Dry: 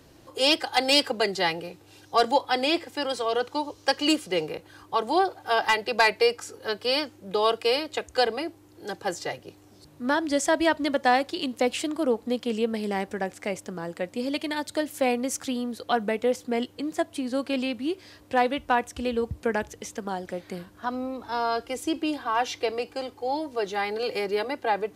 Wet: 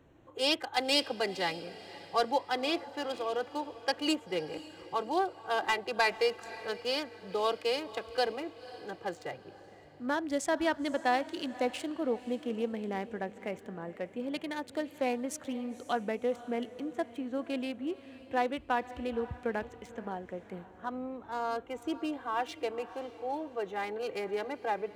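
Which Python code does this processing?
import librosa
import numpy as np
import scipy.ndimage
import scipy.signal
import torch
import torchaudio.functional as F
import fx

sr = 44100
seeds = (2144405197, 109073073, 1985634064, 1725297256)

p1 = fx.wiener(x, sr, points=9)
p2 = p1 + fx.echo_diffused(p1, sr, ms=521, feedback_pct=41, wet_db=-16, dry=0)
y = p2 * librosa.db_to_amplitude(-7.0)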